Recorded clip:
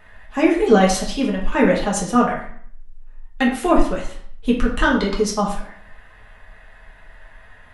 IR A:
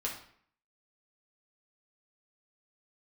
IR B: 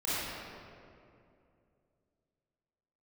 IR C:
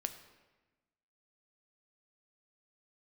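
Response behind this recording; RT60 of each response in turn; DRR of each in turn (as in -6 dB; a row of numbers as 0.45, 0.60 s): A; 0.60, 2.5, 1.2 s; -3.5, -11.5, 7.5 dB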